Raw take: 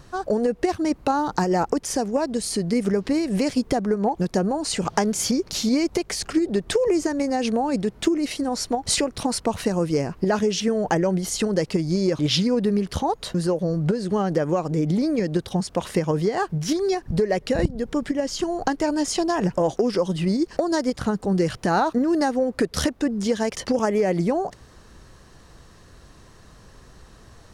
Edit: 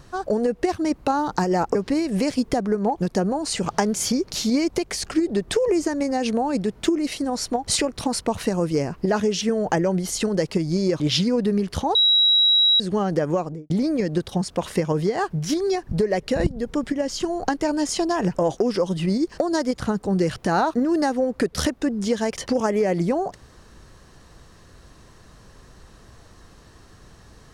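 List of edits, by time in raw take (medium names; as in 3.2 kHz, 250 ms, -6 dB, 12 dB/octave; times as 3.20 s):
1.75–2.94 s: delete
13.14–13.99 s: bleep 3.87 kHz -13.5 dBFS
14.53–14.89 s: studio fade out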